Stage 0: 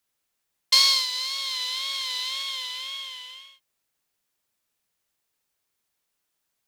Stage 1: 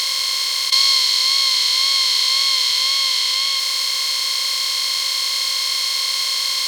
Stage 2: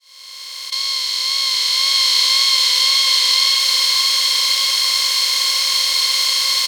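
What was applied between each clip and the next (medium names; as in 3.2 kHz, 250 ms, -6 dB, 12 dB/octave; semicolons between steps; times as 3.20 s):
spectral levelling over time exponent 0.2; in parallel at 0 dB: compressor with a negative ratio -26 dBFS, ratio -1; on the sum: trim -2 dB
fade-in on the opening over 2.17 s; delay 1144 ms -3.5 dB; trim +2 dB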